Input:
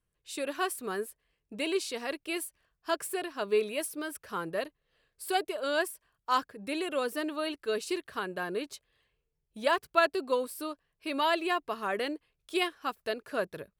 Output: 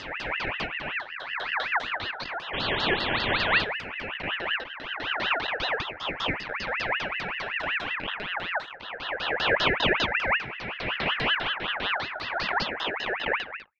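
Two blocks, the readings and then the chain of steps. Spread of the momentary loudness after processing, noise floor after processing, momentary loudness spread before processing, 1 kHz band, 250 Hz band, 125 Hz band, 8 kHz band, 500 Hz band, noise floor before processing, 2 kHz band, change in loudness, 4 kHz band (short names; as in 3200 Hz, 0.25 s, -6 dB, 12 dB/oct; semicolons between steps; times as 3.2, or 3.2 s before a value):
9 LU, -41 dBFS, 12 LU, +3.0 dB, -1.5 dB, +14.0 dB, under -10 dB, -2.0 dB, -83 dBFS, +10.5 dB, +5.0 dB, +10.0 dB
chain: spectral swells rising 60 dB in 2.75 s; LPF 6600 Hz 24 dB/oct; dynamic EQ 520 Hz, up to +4 dB, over -37 dBFS, Q 1.2; LFO low-pass saw down 5 Hz 280–3100 Hz; painted sound noise, 2.53–3.65, 780–2300 Hz -23 dBFS; ring modulator with a swept carrier 1700 Hz, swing 40%, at 5.3 Hz; gain -4 dB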